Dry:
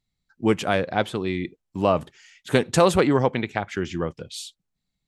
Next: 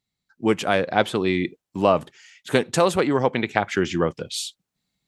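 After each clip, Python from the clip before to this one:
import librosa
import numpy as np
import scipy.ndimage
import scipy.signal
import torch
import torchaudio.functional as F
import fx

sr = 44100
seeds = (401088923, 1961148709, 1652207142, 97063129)

y = fx.rider(x, sr, range_db=4, speed_s=0.5)
y = fx.highpass(y, sr, hz=170.0, slope=6)
y = F.gain(torch.from_numpy(y), 2.5).numpy()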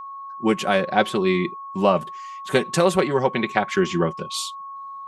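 y = x + 0.63 * np.pad(x, (int(5.3 * sr / 1000.0), 0))[:len(x)]
y = y + 10.0 ** (-32.0 / 20.0) * np.sin(2.0 * np.pi * 1100.0 * np.arange(len(y)) / sr)
y = F.gain(torch.from_numpy(y), -1.0).numpy()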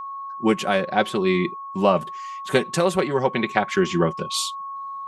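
y = fx.rider(x, sr, range_db=3, speed_s=0.5)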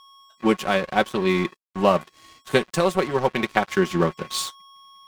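y = np.sign(x) * np.maximum(np.abs(x) - 10.0 ** (-32.0 / 20.0), 0.0)
y = F.gain(torch.from_numpy(y), 1.0).numpy()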